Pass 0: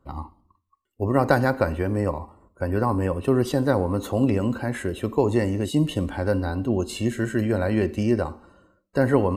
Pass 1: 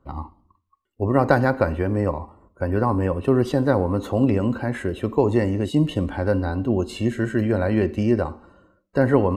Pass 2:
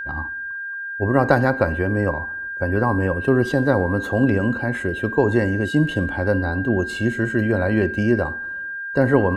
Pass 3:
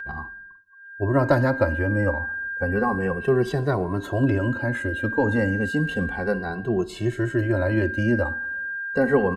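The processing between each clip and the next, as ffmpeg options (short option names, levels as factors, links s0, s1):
-af "highshelf=f=5500:g=-11.5,volume=1.26"
-af "aeval=exprs='val(0)+0.0398*sin(2*PI*1600*n/s)':c=same,volume=1.12"
-filter_complex "[0:a]asplit=2[s0][s1];[s1]adelay=2.2,afreqshift=-0.32[s2];[s0][s2]amix=inputs=2:normalize=1"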